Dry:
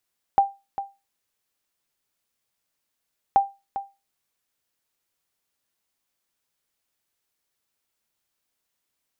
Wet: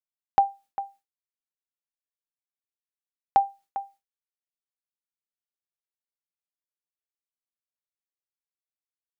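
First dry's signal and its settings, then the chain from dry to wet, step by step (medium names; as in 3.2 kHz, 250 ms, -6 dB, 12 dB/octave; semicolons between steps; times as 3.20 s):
sonar ping 792 Hz, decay 0.25 s, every 2.98 s, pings 2, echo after 0.40 s, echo -12.5 dB -9 dBFS
expander -47 dBFS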